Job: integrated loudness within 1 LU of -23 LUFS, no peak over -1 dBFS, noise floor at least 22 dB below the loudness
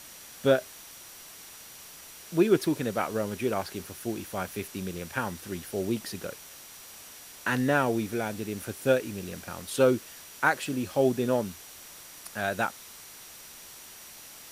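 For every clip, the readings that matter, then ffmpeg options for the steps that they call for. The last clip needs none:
steady tone 5800 Hz; tone level -55 dBFS; noise floor -48 dBFS; noise floor target -51 dBFS; loudness -29.0 LUFS; peak -8.0 dBFS; loudness target -23.0 LUFS
-> -af "bandreject=f=5.8k:w=30"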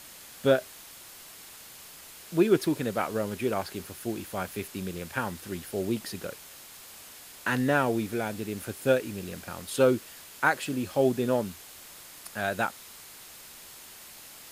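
steady tone none; noise floor -48 dBFS; noise floor target -51 dBFS
-> -af "afftdn=nr=6:nf=-48"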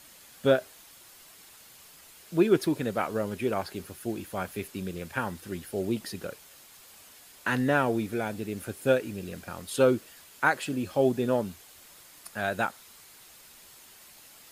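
noise floor -53 dBFS; loudness -29.0 LUFS; peak -8.0 dBFS; loudness target -23.0 LUFS
-> -af "volume=6dB"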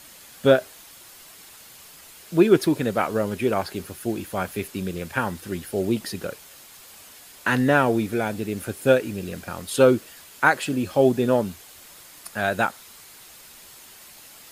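loudness -23.0 LUFS; peak -2.0 dBFS; noise floor -47 dBFS

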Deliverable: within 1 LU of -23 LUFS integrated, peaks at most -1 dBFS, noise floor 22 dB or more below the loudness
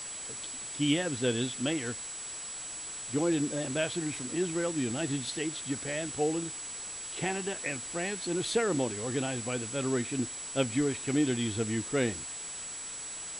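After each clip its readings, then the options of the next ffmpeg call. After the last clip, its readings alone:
steady tone 7800 Hz; tone level -39 dBFS; noise floor -41 dBFS; noise floor target -54 dBFS; loudness -32.0 LUFS; peak -13.0 dBFS; loudness target -23.0 LUFS
-> -af "bandreject=f=7.8k:w=30"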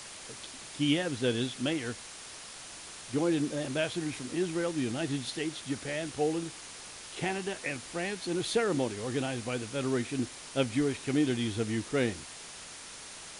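steady tone none; noise floor -46 dBFS; noise floor target -55 dBFS
-> -af "afftdn=nr=9:nf=-46"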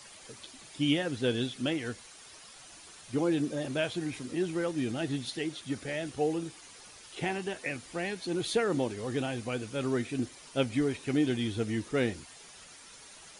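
noise floor -52 dBFS; noise floor target -55 dBFS
-> -af "afftdn=nr=6:nf=-52"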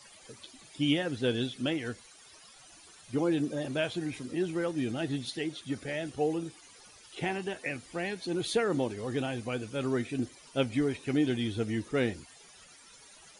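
noise floor -55 dBFS; loudness -32.5 LUFS; peak -13.0 dBFS; loudness target -23.0 LUFS
-> -af "volume=9.5dB"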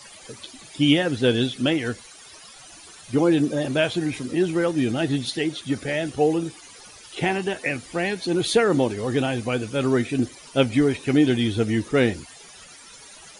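loudness -23.0 LUFS; peak -3.5 dBFS; noise floor -46 dBFS

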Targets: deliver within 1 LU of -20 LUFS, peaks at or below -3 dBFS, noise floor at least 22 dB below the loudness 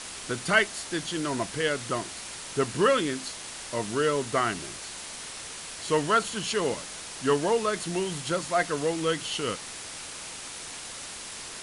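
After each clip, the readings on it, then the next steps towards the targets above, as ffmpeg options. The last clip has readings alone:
noise floor -40 dBFS; noise floor target -51 dBFS; loudness -29.0 LUFS; peak -8.5 dBFS; loudness target -20.0 LUFS
-> -af "afftdn=nr=11:nf=-40"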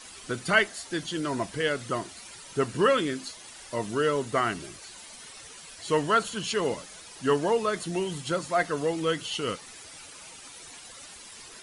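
noise floor -47 dBFS; noise floor target -50 dBFS
-> -af "afftdn=nr=6:nf=-47"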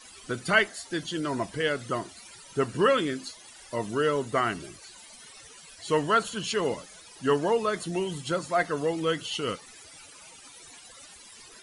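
noise floor -50 dBFS; loudness -28.0 LUFS; peak -8.5 dBFS; loudness target -20.0 LUFS
-> -af "volume=8dB,alimiter=limit=-3dB:level=0:latency=1"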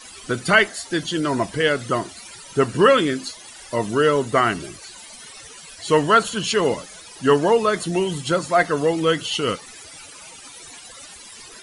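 loudness -20.0 LUFS; peak -3.0 dBFS; noise floor -42 dBFS

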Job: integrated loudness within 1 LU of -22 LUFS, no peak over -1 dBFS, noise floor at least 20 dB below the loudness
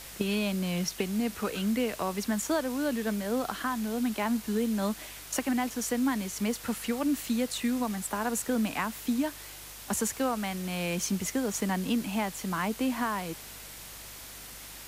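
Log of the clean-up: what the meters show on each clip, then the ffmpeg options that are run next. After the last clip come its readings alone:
hum 50 Hz; harmonics up to 150 Hz; hum level -53 dBFS; noise floor -45 dBFS; noise floor target -51 dBFS; loudness -30.5 LUFS; peak -14.0 dBFS; loudness target -22.0 LUFS
-> -af "bandreject=f=50:t=h:w=4,bandreject=f=100:t=h:w=4,bandreject=f=150:t=h:w=4"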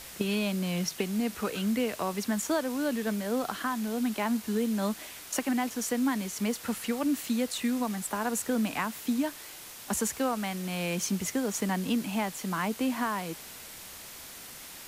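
hum none; noise floor -46 dBFS; noise floor target -51 dBFS
-> -af "afftdn=nr=6:nf=-46"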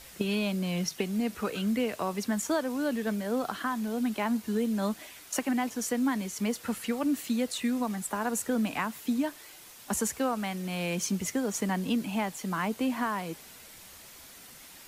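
noise floor -50 dBFS; noise floor target -51 dBFS
-> -af "afftdn=nr=6:nf=-50"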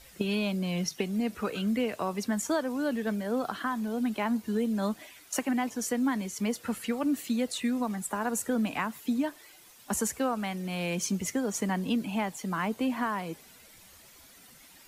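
noise floor -55 dBFS; loudness -31.0 LUFS; peak -14.0 dBFS; loudness target -22.0 LUFS
-> -af "volume=9dB"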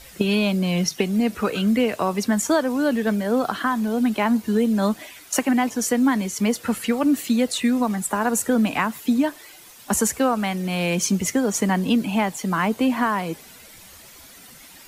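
loudness -22.0 LUFS; peak -5.0 dBFS; noise floor -46 dBFS

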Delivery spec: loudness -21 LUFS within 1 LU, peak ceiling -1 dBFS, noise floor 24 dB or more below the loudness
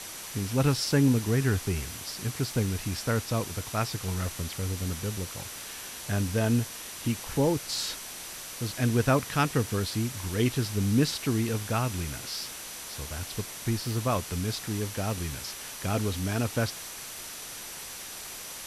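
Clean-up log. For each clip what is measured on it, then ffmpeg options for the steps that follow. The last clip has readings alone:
steady tone 5900 Hz; tone level -49 dBFS; noise floor -41 dBFS; noise floor target -54 dBFS; loudness -30.0 LUFS; peak -10.5 dBFS; loudness target -21.0 LUFS
-> -af "bandreject=f=5.9k:w=30"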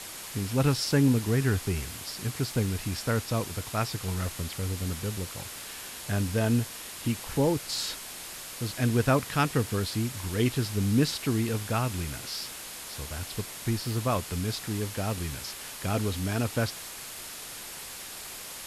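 steady tone none; noise floor -41 dBFS; noise floor target -54 dBFS
-> -af "afftdn=nr=13:nf=-41"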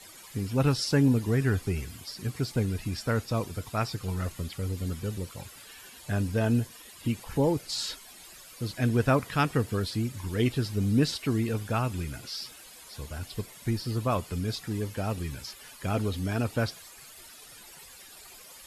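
noise floor -50 dBFS; noise floor target -54 dBFS
-> -af "afftdn=nr=6:nf=-50"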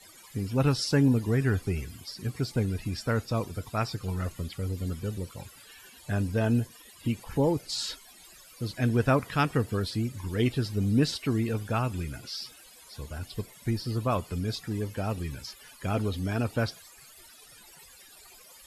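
noise floor -53 dBFS; noise floor target -54 dBFS
-> -af "afftdn=nr=6:nf=-53"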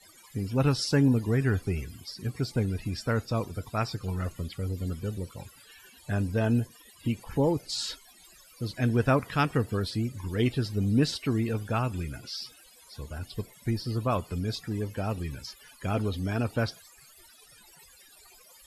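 noise floor -56 dBFS; loudness -30.0 LUFS; peak -11.0 dBFS; loudness target -21.0 LUFS
-> -af "volume=9dB"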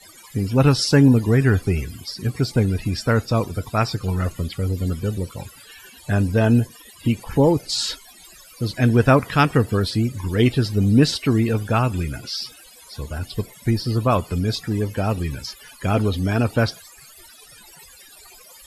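loudness -21.0 LUFS; peak -2.0 dBFS; noise floor -47 dBFS

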